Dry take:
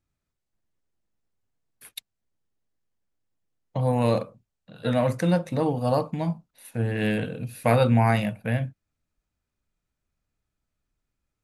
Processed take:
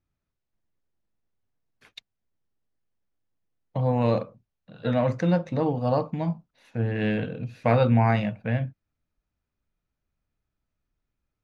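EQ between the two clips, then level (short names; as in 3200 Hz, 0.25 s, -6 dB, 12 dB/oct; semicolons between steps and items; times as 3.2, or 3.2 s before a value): air absorption 230 m; bell 6500 Hz +8.5 dB 0.79 oct; 0.0 dB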